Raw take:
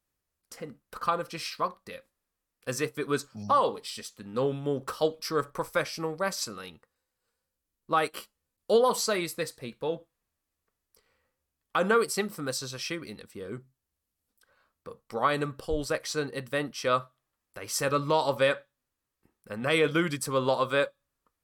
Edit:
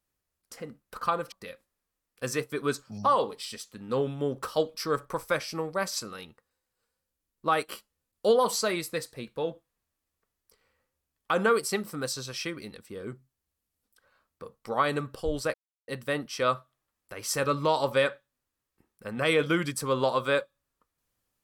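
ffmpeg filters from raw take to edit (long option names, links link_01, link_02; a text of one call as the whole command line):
ffmpeg -i in.wav -filter_complex "[0:a]asplit=4[link_01][link_02][link_03][link_04];[link_01]atrim=end=1.322[link_05];[link_02]atrim=start=1.768:end=15.99,asetpts=PTS-STARTPTS,afade=type=out:start_time=14.218:duration=0.004:curve=hsin[link_06];[link_03]atrim=start=15.99:end=16.33,asetpts=PTS-STARTPTS,volume=0[link_07];[link_04]atrim=start=16.33,asetpts=PTS-STARTPTS,afade=type=in:duration=0.004:curve=hsin[link_08];[link_06][link_07][link_08]concat=n=3:v=0:a=1[link_09];[link_05][link_09]acrossfade=duration=0.004:curve1=hsin:curve2=hsin" out.wav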